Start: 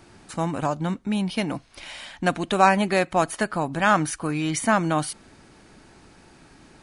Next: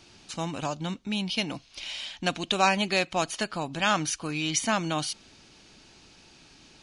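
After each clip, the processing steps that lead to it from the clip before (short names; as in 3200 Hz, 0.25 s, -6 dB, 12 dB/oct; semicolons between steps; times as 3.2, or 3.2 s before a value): band shelf 4100 Hz +11.5 dB; gain -6.5 dB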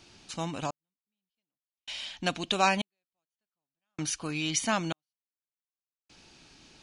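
step gate "xxx.....x" 64 bpm -60 dB; gain -2 dB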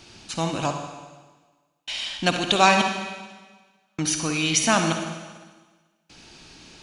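reverb RT60 1.4 s, pre-delay 49 ms, DRR 4.5 dB; gain +7.5 dB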